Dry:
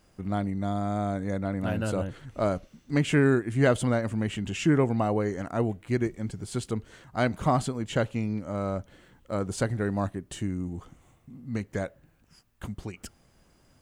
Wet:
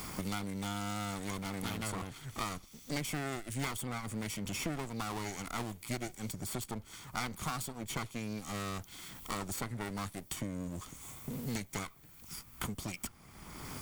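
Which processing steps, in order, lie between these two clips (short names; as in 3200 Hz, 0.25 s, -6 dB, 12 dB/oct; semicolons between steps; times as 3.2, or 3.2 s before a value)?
minimum comb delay 0.89 ms; pre-emphasis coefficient 0.8; three-band squash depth 100%; gain +4.5 dB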